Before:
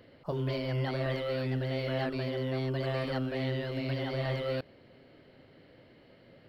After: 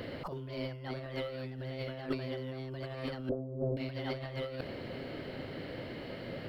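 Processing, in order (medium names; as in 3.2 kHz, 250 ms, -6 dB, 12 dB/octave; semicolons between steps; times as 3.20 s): 3.29–3.77 s: steep low-pass 680 Hz; compressor with a negative ratio -40 dBFS, ratio -0.5; trim +5 dB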